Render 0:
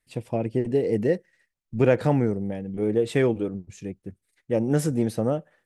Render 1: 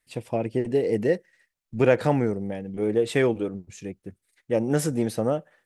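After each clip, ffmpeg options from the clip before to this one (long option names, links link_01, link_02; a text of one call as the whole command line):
ffmpeg -i in.wav -af "lowshelf=frequency=370:gain=-6.5,volume=3dB" out.wav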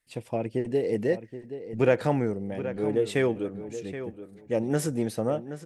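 ffmpeg -i in.wav -filter_complex "[0:a]asplit=2[link_01][link_02];[link_02]adelay=775,lowpass=frequency=3300:poles=1,volume=-11.5dB,asplit=2[link_03][link_04];[link_04]adelay=775,lowpass=frequency=3300:poles=1,volume=0.21,asplit=2[link_05][link_06];[link_06]adelay=775,lowpass=frequency=3300:poles=1,volume=0.21[link_07];[link_01][link_03][link_05][link_07]amix=inputs=4:normalize=0,volume=-3dB" out.wav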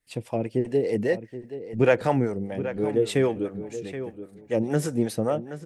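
ffmpeg -i in.wav -filter_complex "[0:a]acrossover=split=500[link_01][link_02];[link_01]aeval=exprs='val(0)*(1-0.7/2+0.7/2*cos(2*PI*5*n/s))':channel_layout=same[link_03];[link_02]aeval=exprs='val(0)*(1-0.7/2-0.7/2*cos(2*PI*5*n/s))':channel_layout=same[link_04];[link_03][link_04]amix=inputs=2:normalize=0,volume=5.5dB" out.wav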